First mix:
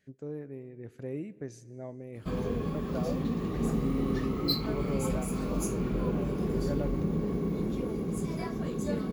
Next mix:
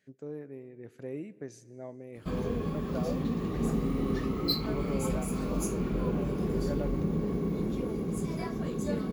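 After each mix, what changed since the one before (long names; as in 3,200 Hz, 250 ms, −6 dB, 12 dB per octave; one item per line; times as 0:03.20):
speech: add high-pass filter 200 Hz 6 dB per octave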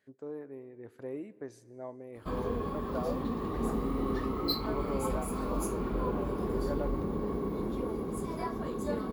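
master: add graphic EQ with 15 bands 160 Hz −10 dB, 1,000 Hz +7 dB, 2,500 Hz −5 dB, 6,300 Hz −8 dB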